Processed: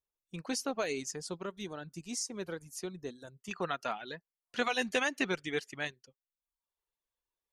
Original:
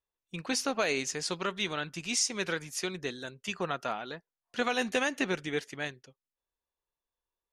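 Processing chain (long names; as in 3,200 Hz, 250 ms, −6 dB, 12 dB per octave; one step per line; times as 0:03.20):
reverb reduction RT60 0.73 s
parametric band 2,500 Hz −6 dB 2.4 octaves, from 0:01.16 −14 dB, from 0:03.51 +2 dB
level −2 dB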